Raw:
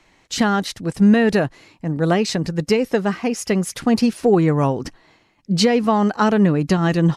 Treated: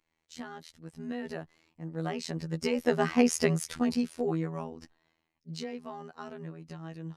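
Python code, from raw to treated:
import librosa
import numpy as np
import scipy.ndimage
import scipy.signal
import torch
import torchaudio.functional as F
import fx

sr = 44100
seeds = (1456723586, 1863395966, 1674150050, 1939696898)

y = fx.doppler_pass(x, sr, speed_mps=7, closest_m=1.6, pass_at_s=3.22)
y = fx.robotise(y, sr, hz=81.1)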